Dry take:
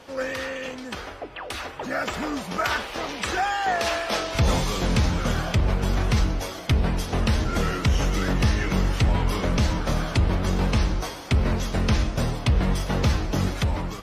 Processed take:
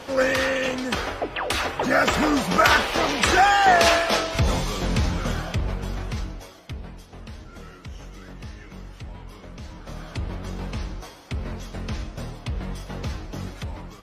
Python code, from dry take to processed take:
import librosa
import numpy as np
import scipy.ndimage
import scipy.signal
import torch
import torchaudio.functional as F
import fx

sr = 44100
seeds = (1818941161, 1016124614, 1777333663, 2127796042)

y = fx.gain(x, sr, db=fx.line((3.88, 8.0), (4.48, -1.5), (5.23, -1.5), (6.35, -10.0), (7.07, -17.5), (9.6, -17.5), (10.15, -9.0)))